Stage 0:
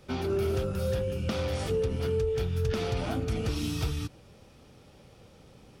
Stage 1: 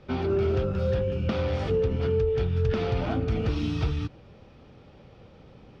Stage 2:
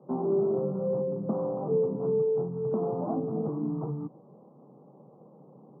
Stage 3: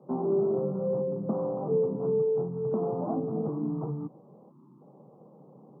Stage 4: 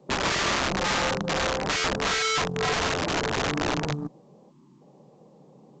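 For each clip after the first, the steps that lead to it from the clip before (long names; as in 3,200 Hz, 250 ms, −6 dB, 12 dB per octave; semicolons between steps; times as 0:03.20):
high-frequency loss of the air 220 metres; level +4 dB
Chebyshev band-pass filter 140–1,100 Hz, order 5
gain on a spectral selection 0:04.51–0:04.81, 390–850 Hz −21 dB
wrap-around overflow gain 26 dB; harmonic generator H 3 −15 dB, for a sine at −26 dBFS; level +6.5 dB; A-law companding 128 kbit/s 16,000 Hz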